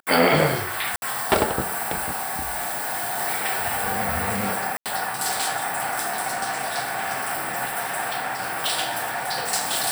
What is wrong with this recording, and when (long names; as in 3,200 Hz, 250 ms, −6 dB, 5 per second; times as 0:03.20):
0:00.96–0:01.02: drop-out 61 ms
0:02.14–0:03.20: clipping −23.5 dBFS
0:04.77–0:04.86: drop-out 87 ms